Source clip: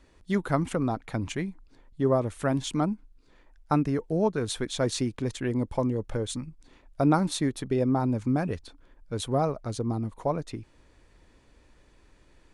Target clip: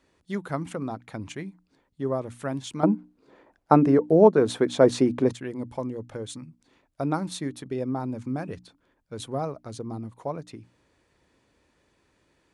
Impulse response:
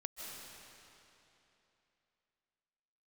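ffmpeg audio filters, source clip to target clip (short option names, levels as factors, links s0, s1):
-filter_complex "[0:a]highpass=94,bandreject=f=60:t=h:w=6,bandreject=f=120:t=h:w=6,bandreject=f=180:t=h:w=6,bandreject=f=240:t=h:w=6,bandreject=f=300:t=h:w=6,asettb=1/sr,asplit=3[s0][s1][s2];[s0]atrim=end=2.834[s3];[s1]atrim=start=2.83:end=5.33,asetpts=PTS-STARTPTS,afade=t=in:d=0.004:c=qsin,afade=t=out:st=2.496:d=0.004:c=qsin,equalizer=f=480:w=0.3:g=15[s4];[s2]atrim=start=5.326[s5];[s3][s4]acrossfade=d=0.004:c1=hsin:c2=qsin[s6];[s6][s5]acrossfade=d=0.004:c1=qsin:c2=hsin,volume=0.631"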